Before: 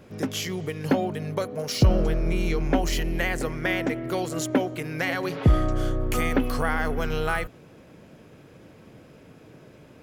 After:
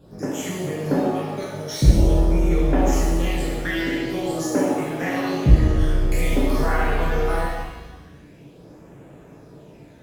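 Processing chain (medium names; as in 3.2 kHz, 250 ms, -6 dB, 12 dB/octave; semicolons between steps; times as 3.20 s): phase shifter stages 12, 0.47 Hz, lowest notch 790–4800 Hz; pitch-shifted reverb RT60 1.1 s, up +7 st, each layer -8 dB, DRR -6.5 dB; trim -4 dB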